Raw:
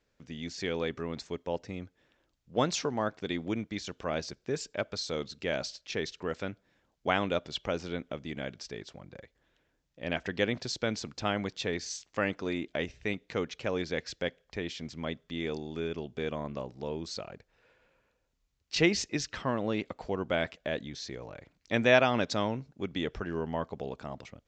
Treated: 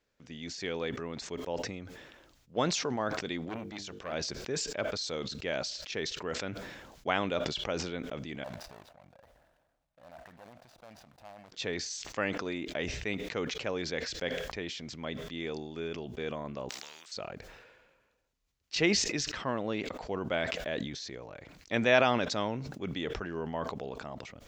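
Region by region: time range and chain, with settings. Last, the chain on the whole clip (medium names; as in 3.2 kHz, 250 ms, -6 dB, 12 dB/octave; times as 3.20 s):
3.49–4.13 s: hum notches 50/100/150/200/250/300/350/400/450/500 Hz + short-mantissa float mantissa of 6-bit + transformer saturation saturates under 1.3 kHz
8.44–11.52 s: median filter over 41 samples + compression 3:1, threshold -48 dBFS + resonant low shelf 520 Hz -7.5 dB, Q 3
16.69–17.12 s: Chebyshev high-pass 2.2 kHz + spectrum-flattening compressor 4:1
whole clip: bass shelf 270 Hz -4.5 dB; decay stretcher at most 39 dB/s; trim -1.5 dB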